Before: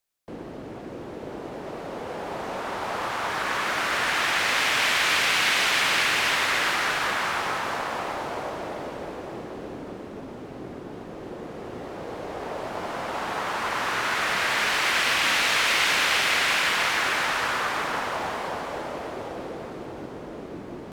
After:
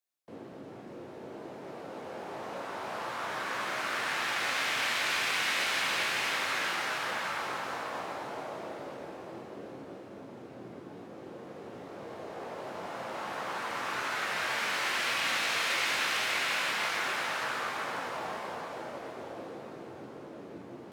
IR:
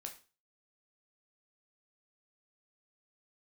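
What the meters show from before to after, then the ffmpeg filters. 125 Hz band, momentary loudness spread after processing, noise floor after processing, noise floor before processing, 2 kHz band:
-9.5 dB, 18 LU, -47 dBFS, -39 dBFS, -8.0 dB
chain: -filter_complex "[0:a]highpass=f=92:w=0.5412,highpass=f=92:w=1.3066[a];[1:a]atrim=start_sample=2205[b];[a][b]afir=irnorm=-1:irlink=0,volume=-4dB"

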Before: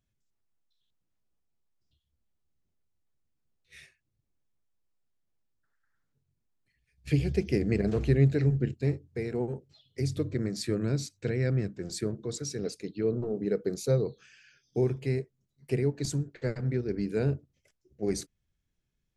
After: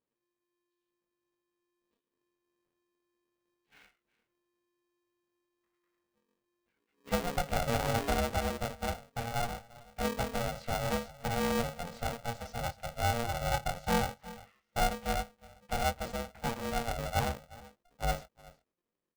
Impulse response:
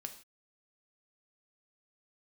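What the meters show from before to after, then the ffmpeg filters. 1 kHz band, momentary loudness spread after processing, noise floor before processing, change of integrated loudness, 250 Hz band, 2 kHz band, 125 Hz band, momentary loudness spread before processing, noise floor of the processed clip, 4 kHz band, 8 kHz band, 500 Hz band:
+18.0 dB, 8 LU, -80 dBFS, -4.0 dB, -7.5 dB, +6.0 dB, -9.5 dB, 9 LU, under -85 dBFS, +4.0 dB, 0.0 dB, -5.0 dB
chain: -filter_complex "[0:a]lowpass=f=1.8k:p=1,aemphasis=mode=reproduction:type=75fm,asplit=2[a][b];[b]aecho=0:1:362:0.1[c];[a][c]amix=inputs=2:normalize=0,aeval=exprs='0.316*(cos(1*acos(clip(val(0)/0.316,-1,1)))-cos(1*PI/2))+0.0112*(cos(8*acos(clip(val(0)/0.316,-1,1)))-cos(8*PI/2))':c=same,lowshelf=f=100:g=-10.5,asplit=2[d][e];[e]alimiter=limit=-20.5dB:level=0:latency=1:release=173,volume=0dB[f];[d][f]amix=inputs=2:normalize=0,flanger=delay=18:depth=7.4:speed=0.12,dynaudnorm=f=390:g=9:m=3.5dB,aeval=exprs='val(0)*sgn(sin(2*PI*350*n/s))':c=same,volume=-8dB"

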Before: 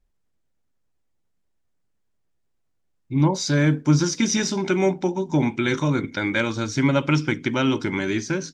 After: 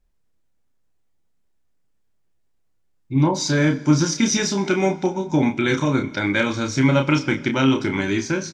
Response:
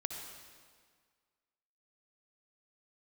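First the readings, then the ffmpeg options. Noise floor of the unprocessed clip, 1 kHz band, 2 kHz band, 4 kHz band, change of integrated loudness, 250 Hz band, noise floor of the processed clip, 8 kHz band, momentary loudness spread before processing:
-71 dBFS, +2.5 dB, +2.5 dB, +2.5 dB, +2.0 dB, +2.5 dB, -64 dBFS, +2.5 dB, 5 LU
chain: -filter_complex "[0:a]asplit=2[a][b];[b]adelay=30,volume=-6dB[c];[a][c]amix=inputs=2:normalize=0,asplit=2[d][e];[1:a]atrim=start_sample=2205[f];[e][f]afir=irnorm=-1:irlink=0,volume=-13.5dB[g];[d][g]amix=inputs=2:normalize=0"

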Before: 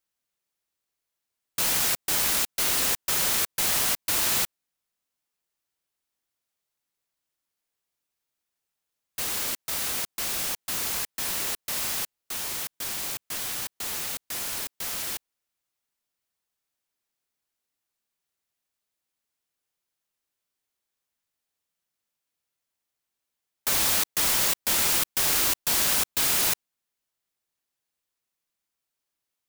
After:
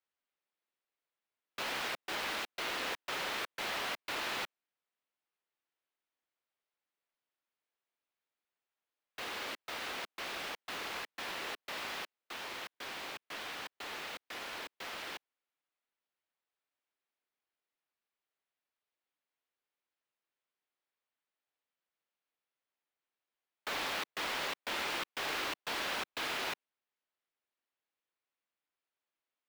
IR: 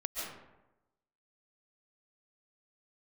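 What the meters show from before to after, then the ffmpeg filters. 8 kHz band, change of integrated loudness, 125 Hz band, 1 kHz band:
-22.5 dB, -14.0 dB, -16.0 dB, -4.5 dB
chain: -filter_complex "[0:a]acrossover=split=260 3800:gain=0.2 1 0.0708[a][b][c];[a][b][c]amix=inputs=3:normalize=0,asplit=2[d][e];[e]alimiter=level_in=4dB:limit=-24dB:level=0:latency=1:release=25,volume=-4dB,volume=-2dB[f];[d][f]amix=inputs=2:normalize=0,volume=-8dB"

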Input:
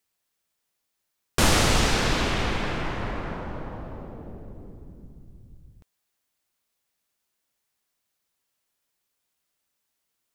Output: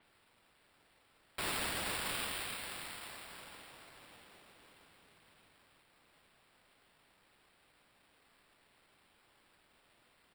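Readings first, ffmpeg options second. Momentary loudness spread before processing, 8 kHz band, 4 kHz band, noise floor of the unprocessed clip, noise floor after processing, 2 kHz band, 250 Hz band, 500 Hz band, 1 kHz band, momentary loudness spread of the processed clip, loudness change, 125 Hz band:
22 LU, -13.0 dB, -13.0 dB, -79 dBFS, -71 dBFS, -13.0 dB, -22.0 dB, -19.0 dB, -16.0 dB, 21 LU, -14.5 dB, -26.0 dB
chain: -filter_complex "[0:a]aderivative,acompressor=mode=upward:threshold=-56dB:ratio=2.5,alimiter=level_in=0.5dB:limit=-24dB:level=0:latency=1:release=259,volume=-0.5dB,asplit=2[a][b];[b]aecho=0:1:642|1284|1926|2568|3210|3852:0.266|0.146|0.0805|0.0443|0.0243|0.0134[c];[a][c]amix=inputs=2:normalize=0,acrusher=samples=7:mix=1:aa=0.000001,adynamicequalizer=threshold=0.00355:dfrequency=4700:dqfactor=0.7:tfrequency=4700:tqfactor=0.7:attack=5:release=100:ratio=0.375:range=2.5:mode=boostabove:tftype=highshelf,volume=-3.5dB"

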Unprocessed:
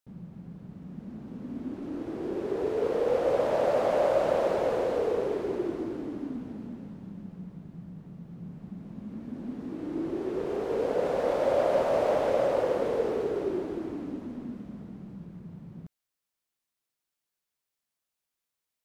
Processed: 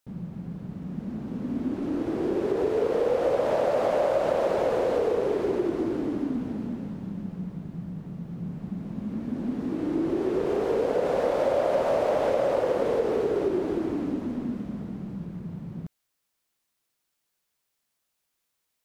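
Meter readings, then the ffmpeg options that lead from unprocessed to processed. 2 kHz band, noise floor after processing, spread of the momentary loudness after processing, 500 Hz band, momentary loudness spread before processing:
+2.5 dB, -79 dBFS, 13 LU, +2.5 dB, 19 LU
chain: -af "acompressor=threshold=-30dB:ratio=3,volume=7.5dB"

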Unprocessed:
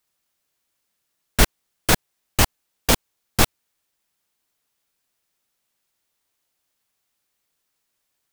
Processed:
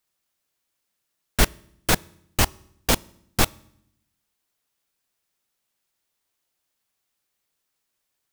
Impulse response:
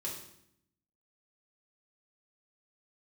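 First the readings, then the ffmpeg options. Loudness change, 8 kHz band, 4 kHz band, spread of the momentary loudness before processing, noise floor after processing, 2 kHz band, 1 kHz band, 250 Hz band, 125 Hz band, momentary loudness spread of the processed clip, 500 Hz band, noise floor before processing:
-2.5 dB, -2.5 dB, -2.5 dB, 8 LU, -79 dBFS, -2.5 dB, -2.5 dB, -2.5 dB, -2.5 dB, 8 LU, -2.5 dB, -76 dBFS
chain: -filter_complex "[0:a]asplit=2[a][b];[1:a]atrim=start_sample=2205[c];[b][c]afir=irnorm=-1:irlink=0,volume=-21.5dB[d];[a][d]amix=inputs=2:normalize=0,volume=-3dB"

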